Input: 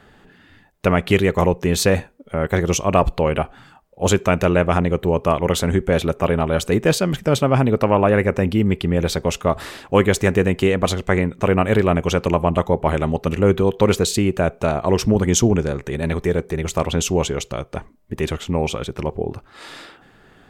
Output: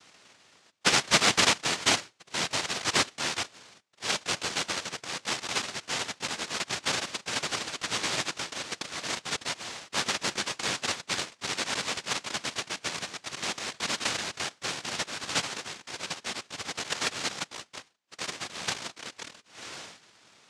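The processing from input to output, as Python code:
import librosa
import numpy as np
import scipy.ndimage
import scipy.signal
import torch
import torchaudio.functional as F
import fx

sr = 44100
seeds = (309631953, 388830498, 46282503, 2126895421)

y = fx.filter_sweep_bandpass(x, sr, from_hz=680.0, to_hz=2800.0, start_s=1.27, end_s=3.99, q=1.3)
y = fx.fold_sine(y, sr, drive_db=5, ceiling_db=-5.5)
y = fx.noise_vocoder(y, sr, seeds[0], bands=1)
y = fx.air_absorb(y, sr, metres=62.0)
y = y * librosa.db_to_amplitude(-7.0)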